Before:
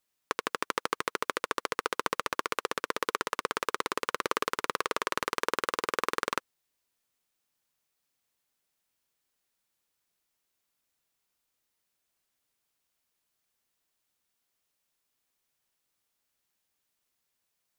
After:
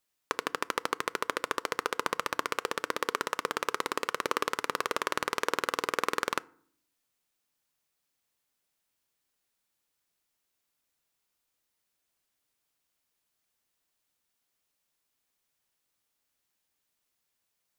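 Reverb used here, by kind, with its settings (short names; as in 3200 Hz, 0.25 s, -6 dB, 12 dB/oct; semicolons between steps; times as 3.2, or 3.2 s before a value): FDN reverb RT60 0.56 s, low-frequency decay 1.55×, high-frequency decay 0.55×, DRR 19.5 dB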